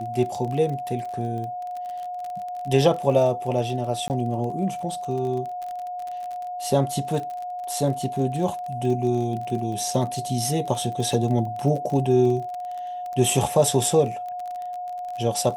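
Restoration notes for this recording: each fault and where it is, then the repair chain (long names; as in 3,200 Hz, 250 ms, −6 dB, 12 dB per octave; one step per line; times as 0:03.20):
surface crackle 34 per second −30 dBFS
whistle 720 Hz −29 dBFS
0:04.08–0:04.10: drop-out 19 ms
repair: click removal
notch filter 720 Hz, Q 30
repair the gap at 0:04.08, 19 ms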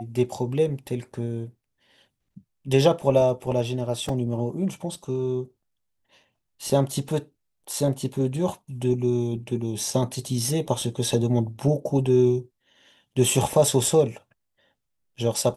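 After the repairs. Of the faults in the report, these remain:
none of them is left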